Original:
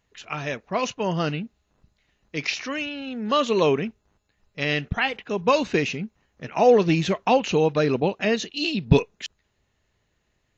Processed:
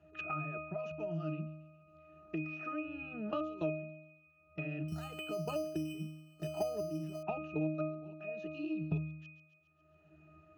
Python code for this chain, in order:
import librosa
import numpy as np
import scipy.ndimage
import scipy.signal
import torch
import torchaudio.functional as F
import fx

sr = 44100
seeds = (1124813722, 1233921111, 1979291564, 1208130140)

y = fx.highpass(x, sr, hz=340.0, slope=6)
y = fx.peak_eq(y, sr, hz=3700.0, db=-4.0, octaves=0.56)
y = fx.level_steps(y, sr, step_db=21)
y = fx.octave_resonator(y, sr, note='D#', decay_s=0.6)
y = fx.echo_wet_highpass(y, sr, ms=137, feedback_pct=39, hz=3100.0, wet_db=-13.0)
y = fx.resample_bad(y, sr, factor=8, down='none', up='hold', at=(4.88, 7.23))
y = fx.band_squash(y, sr, depth_pct=100)
y = y * librosa.db_to_amplitude(13.0)